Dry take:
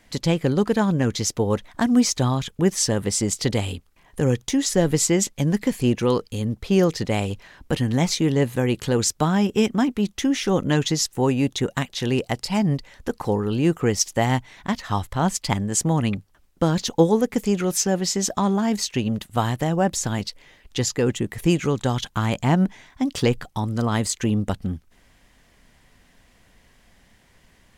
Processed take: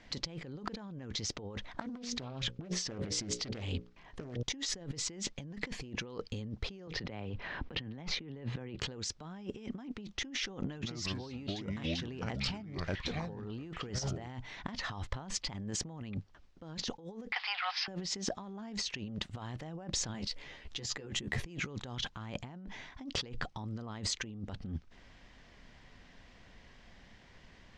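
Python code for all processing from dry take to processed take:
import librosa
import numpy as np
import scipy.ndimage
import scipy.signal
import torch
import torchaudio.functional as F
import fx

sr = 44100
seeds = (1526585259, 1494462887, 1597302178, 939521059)

y = fx.chain(x, sr, fx.lowpass(hz=8900.0, slope=12),
    fx.hum_notches(base_hz=60, count=10),
    fx.doppler_dist(depth_ms=0.59), at=(1.65, 4.43))
y = fx.chain(y, sr, fx.lowpass(hz=3200.0, slope=12),
    fx.band_squash(depth_pct=70), at=(6.87, 8.79))
y = fx.chain(y, sr, fx.transient(attack_db=-7, sustain_db=-3),
    fx.echo_pitch(ms=143, semitones=-4, count=3, db_per_echo=-6.0), at=(10.6, 14.28))
y = fx.chain(y, sr, fx.zero_step(step_db=-36.0),
    fx.cheby1_bandpass(low_hz=740.0, high_hz=5000.0, order=5),
    fx.peak_eq(hz=2200.0, db=6.0, octaves=1.6), at=(17.32, 17.88))
y = fx.chain(y, sr, fx.peak_eq(hz=12000.0, db=13.0, octaves=0.53),
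    fx.doubler(ms=14.0, db=-3.0), at=(20.13, 21.44))
y = scipy.signal.sosfilt(scipy.signal.butter(4, 5700.0, 'lowpass', fs=sr, output='sos'), y)
y = fx.over_compress(y, sr, threshold_db=-32.0, ratio=-1.0)
y = F.gain(torch.from_numpy(y), -9.0).numpy()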